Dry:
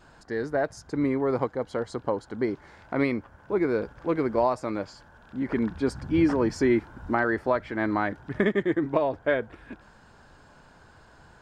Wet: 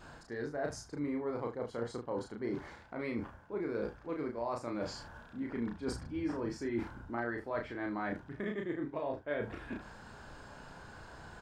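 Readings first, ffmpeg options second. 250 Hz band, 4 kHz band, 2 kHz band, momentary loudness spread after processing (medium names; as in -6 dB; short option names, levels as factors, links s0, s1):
-11.5 dB, -7.0 dB, -11.0 dB, 14 LU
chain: -af "areverse,acompressor=threshold=0.0126:ratio=6,areverse,aecho=1:1:34|76:0.708|0.188,volume=1.12"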